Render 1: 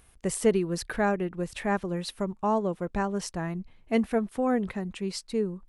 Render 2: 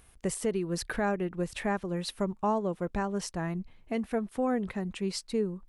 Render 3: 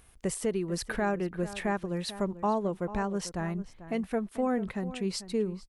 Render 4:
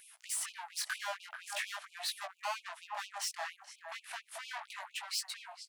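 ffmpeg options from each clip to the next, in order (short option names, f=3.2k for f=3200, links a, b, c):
-af "alimiter=limit=-20dB:level=0:latency=1:release=340"
-filter_complex "[0:a]asplit=2[a][b];[b]adelay=443.1,volume=-14dB,highshelf=f=4k:g=-9.97[c];[a][c]amix=inputs=2:normalize=0"
-af "aeval=exprs='(tanh(89.1*val(0)+0.3)-tanh(0.3))/89.1':c=same,flanger=delay=16:depth=7:speed=0.4,afftfilt=real='re*gte(b*sr/1024,560*pow(2400/560,0.5+0.5*sin(2*PI*4.3*pts/sr)))':imag='im*gte(b*sr/1024,560*pow(2400/560,0.5+0.5*sin(2*PI*4.3*pts/sr)))':win_size=1024:overlap=0.75,volume=10.5dB"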